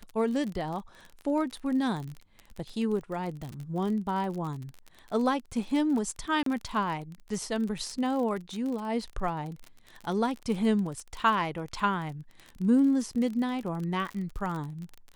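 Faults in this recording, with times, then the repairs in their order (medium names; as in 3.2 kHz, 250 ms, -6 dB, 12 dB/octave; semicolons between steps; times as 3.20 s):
crackle 35 per s -34 dBFS
6.43–6.46 s: dropout 33 ms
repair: de-click; interpolate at 6.43 s, 33 ms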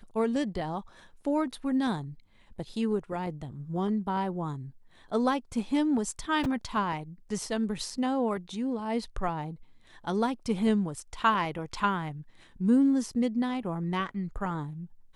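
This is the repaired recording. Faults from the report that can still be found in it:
nothing left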